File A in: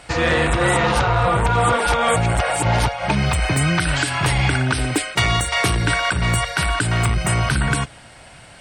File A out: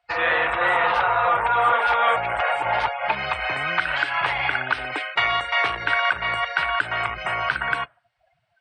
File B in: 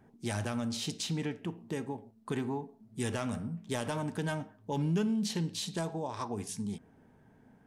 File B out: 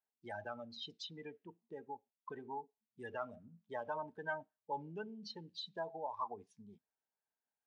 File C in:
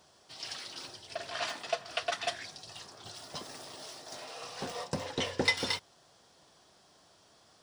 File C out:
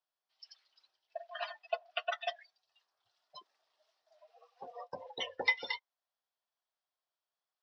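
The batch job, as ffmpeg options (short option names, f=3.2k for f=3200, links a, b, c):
-filter_complex "[0:a]afftdn=nr=31:nf=-32,acrossover=split=3000[a][b];[b]acompressor=threshold=-42dB:ratio=6[c];[a][c]amix=inputs=2:normalize=0,acrossover=split=580 5200:gain=0.0631 1 0.0891[d][e][f];[d][e][f]amix=inputs=3:normalize=0,volume=1.5dB"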